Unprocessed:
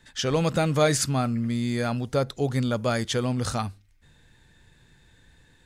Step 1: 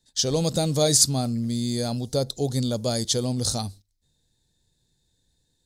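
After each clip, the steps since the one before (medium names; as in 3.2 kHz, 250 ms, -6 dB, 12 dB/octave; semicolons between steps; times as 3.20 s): FFT filter 520 Hz 0 dB, 760 Hz -2 dB, 1.3 kHz -13 dB, 2.7 kHz -9 dB, 4 kHz +9 dB; gate -44 dBFS, range -14 dB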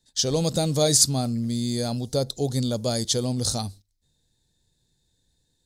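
no audible change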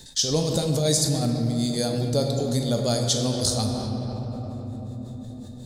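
tremolo 5.5 Hz, depth 81%; simulated room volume 190 m³, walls hard, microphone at 0.3 m; level flattener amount 50%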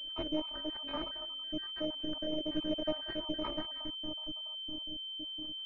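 random holes in the spectrogram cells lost 69%; robot voice 308 Hz; class-D stage that switches slowly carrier 3.1 kHz; trim -6 dB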